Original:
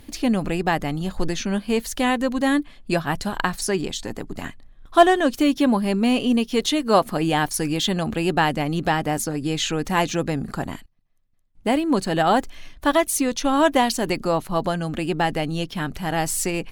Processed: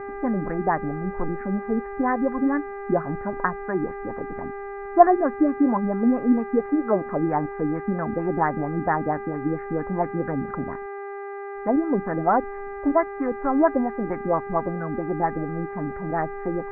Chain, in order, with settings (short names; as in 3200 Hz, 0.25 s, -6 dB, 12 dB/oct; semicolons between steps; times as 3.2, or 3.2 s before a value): LFO low-pass sine 4.4 Hz 260–1500 Hz; buzz 400 Hz, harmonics 10, -29 dBFS -6 dB/oct; elliptic low-pass 2000 Hz, stop band 40 dB; gain -4.5 dB